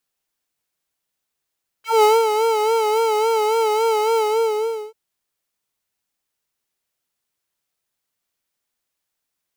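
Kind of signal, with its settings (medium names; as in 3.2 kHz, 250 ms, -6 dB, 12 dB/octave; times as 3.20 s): synth patch with vibrato A5, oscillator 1 triangle, interval -12 st, oscillator 2 level -17 dB, sub 0 dB, noise -17 dB, filter highpass, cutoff 400 Hz, Q 3.3, filter envelope 3 oct, filter decay 0.09 s, filter sustain 15%, attack 192 ms, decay 0.19 s, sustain -7 dB, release 0.76 s, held 2.33 s, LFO 3.6 Hz, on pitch 70 cents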